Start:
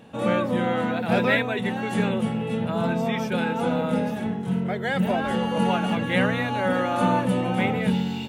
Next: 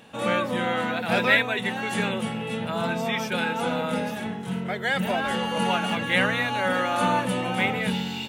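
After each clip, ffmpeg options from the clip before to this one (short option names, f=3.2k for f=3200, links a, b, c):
-af "tiltshelf=f=850:g=-5.5"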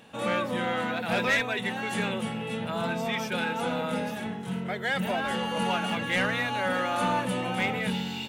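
-af "asoftclip=type=tanh:threshold=-15dB,volume=-2.5dB"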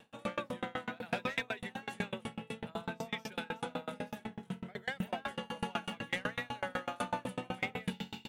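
-af "aeval=exprs='val(0)*pow(10,-32*if(lt(mod(8*n/s,1),2*abs(8)/1000),1-mod(8*n/s,1)/(2*abs(8)/1000),(mod(8*n/s,1)-2*abs(8)/1000)/(1-2*abs(8)/1000))/20)':c=same,volume=-2.5dB"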